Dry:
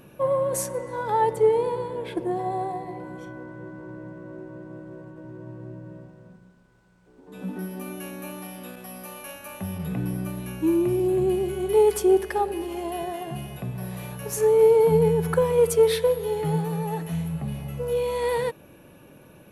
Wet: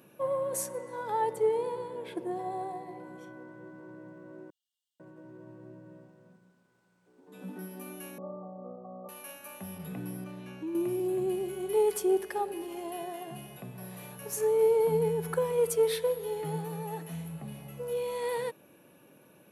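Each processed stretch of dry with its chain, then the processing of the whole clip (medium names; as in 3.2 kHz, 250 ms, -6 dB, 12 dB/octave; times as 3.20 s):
4.50–5.00 s: brick-wall FIR high-pass 2.8 kHz + peaking EQ 5.6 kHz -8 dB 2.4 oct
8.18–9.09 s: steep low-pass 1.2 kHz 96 dB/octave + peaking EQ 330 Hz +7 dB 1.6 oct + comb 1.6 ms, depth 82%
10.24–10.75 s: low-pass 5.1 kHz + compression 2.5:1, threshold -28 dBFS
whole clip: high-pass 170 Hz 12 dB/octave; treble shelf 8.7 kHz +5.5 dB; trim -7.5 dB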